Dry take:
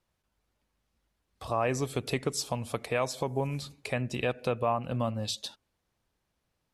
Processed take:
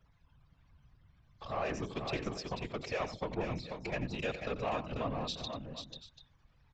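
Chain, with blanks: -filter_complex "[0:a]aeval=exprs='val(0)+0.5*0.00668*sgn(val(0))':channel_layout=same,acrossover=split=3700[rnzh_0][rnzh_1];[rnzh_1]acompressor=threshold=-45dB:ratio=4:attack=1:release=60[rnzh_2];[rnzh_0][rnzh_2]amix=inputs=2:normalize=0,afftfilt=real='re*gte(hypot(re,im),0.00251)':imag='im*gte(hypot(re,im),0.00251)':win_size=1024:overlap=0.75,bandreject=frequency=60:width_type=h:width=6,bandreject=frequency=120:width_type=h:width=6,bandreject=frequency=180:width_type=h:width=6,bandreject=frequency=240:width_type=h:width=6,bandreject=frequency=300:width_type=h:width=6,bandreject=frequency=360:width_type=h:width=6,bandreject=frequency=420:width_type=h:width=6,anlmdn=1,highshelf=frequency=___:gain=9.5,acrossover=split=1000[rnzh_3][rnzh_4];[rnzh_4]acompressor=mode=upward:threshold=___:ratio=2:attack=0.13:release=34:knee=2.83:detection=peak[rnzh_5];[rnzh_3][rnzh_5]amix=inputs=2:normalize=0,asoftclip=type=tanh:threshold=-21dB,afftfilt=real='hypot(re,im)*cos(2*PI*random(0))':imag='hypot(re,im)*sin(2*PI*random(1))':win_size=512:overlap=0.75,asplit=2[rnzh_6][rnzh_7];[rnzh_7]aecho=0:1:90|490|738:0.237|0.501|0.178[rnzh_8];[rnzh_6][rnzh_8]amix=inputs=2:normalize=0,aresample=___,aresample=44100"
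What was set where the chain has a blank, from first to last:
2.8k, -46dB, 16000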